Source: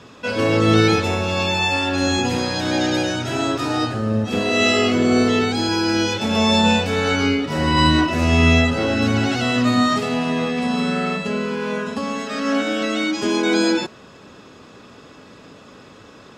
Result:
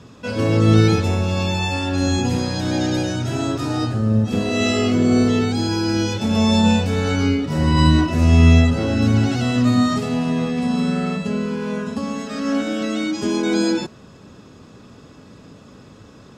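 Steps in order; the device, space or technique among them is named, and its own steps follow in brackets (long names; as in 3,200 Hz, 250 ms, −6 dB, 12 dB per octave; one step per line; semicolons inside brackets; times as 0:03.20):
bass and treble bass +9 dB, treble +10 dB
behind a face mask (high-shelf EQ 2,100 Hz −8 dB)
level −3 dB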